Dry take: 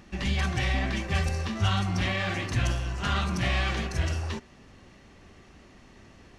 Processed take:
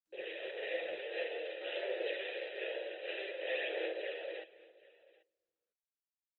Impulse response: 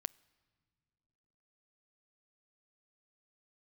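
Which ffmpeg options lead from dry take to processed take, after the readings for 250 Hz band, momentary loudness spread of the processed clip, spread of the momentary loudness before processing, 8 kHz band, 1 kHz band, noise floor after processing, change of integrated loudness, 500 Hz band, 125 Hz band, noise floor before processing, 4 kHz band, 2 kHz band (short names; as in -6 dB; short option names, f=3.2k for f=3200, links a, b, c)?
-21.0 dB, 6 LU, 4 LU, under -40 dB, -19.0 dB, under -85 dBFS, -11.5 dB, +0.5 dB, under -40 dB, -54 dBFS, -11.5 dB, -10.0 dB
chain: -filter_complex "[0:a]aresample=11025,acrusher=bits=5:mix=0:aa=0.000001,aresample=44100,adynamicequalizer=threshold=0.00794:dfrequency=740:dqfactor=0.8:tfrequency=740:tqfactor=0.8:attack=5:release=100:ratio=0.375:range=2:mode=boostabove:tftype=bell,asplit=2[a][b];[1:a]atrim=start_sample=2205,lowshelf=f=120:g=-9,adelay=48[c];[b][c]afir=irnorm=-1:irlink=0,volume=8dB[d];[a][d]amix=inputs=2:normalize=0,aphaser=in_gain=1:out_gain=1:delay=4:decay=0.44:speed=0.52:type=sinusoidal,aeval=exprs='abs(val(0))':c=same,asplit=3[e][f][g];[e]bandpass=f=530:t=q:w=8,volume=0dB[h];[f]bandpass=f=1.84k:t=q:w=8,volume=-6dB[i];[g]bandpass=f=2.48k:t=q:w=8,volume=-9dB[j];[h][i][j]amix=inputs=3:normalize=0,equalizer=f=1.4k:w=0.59:g=-11.5,bandreject=f=1.1k:w=28,aecho=1:1:787:0.075,afftfilt=real='re*between(b*sr/4096,320,4000)':imag='im*between(b*sr/4096,320,4000)':win_size=4096:overlap=0.75,volume=3dB" -ar 48000 -c:a libopus -b:a 20k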